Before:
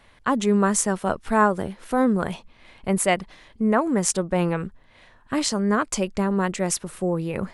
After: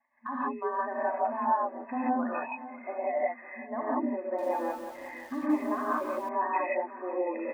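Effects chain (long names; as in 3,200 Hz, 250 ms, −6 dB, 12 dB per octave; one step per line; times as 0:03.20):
expanding power law on the bin magnitudes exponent 2.1
de-essing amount 70%
brick-wall band-pass 230–2,600 Hz
downward expander −56 dBFS
parametric band 330 Hz −12 dB 0.77 octaves
comb filter 1.1 ms, depth 90%
downward compressor, threshold −28 dBFS, peak gain reduction 15.5 dB
brickwall limiter −27 dBFS, peak gain reduction 10.5 dB
repeating echo 550 ms, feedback 47%, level −16 dB
reverb whose tail is shaped and stops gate 200 ms rising, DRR −7.5 dB
0:04.20–0:06.29: feedback echo at a low word length 184 ms, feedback 35%, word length 8 bits, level −7.5 dB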